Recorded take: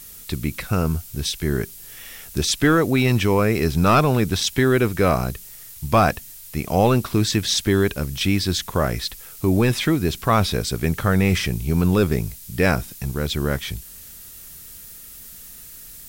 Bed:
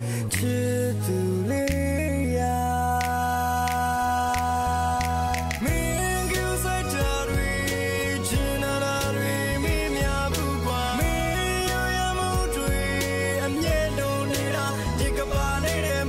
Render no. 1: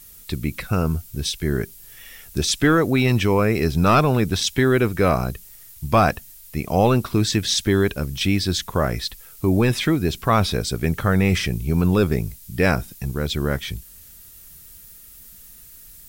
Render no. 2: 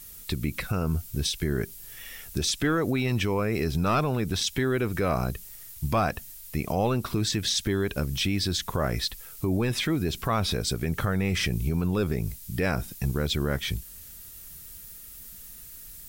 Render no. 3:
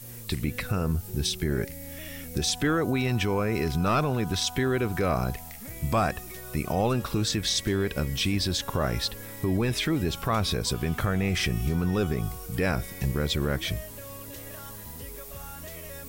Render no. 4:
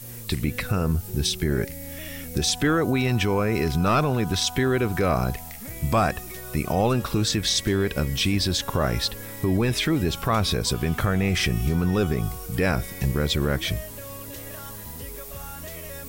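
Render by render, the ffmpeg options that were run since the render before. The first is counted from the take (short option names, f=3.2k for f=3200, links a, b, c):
-af "afftdn=nr=6:nf=-41"
-af "alimiter=limit=-16.5dB:level=0:latency=1:release=121"
-filter_complex "[1:a]volume=-18dB[a];[0:a][a]amix=inputs=2:normalize=0"
-af "volume=3.5dB"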